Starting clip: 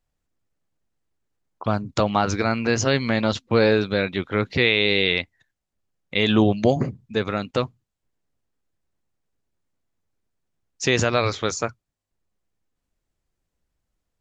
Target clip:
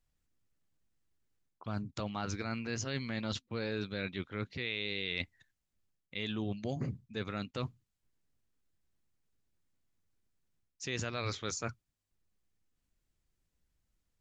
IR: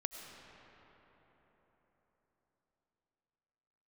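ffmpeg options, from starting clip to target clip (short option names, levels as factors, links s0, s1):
-af "equalizer=f=660:w=0.67:g=-6.5,areverse,acompressor=threshold=0.0224:ratio=5,areverse,volume=0.841"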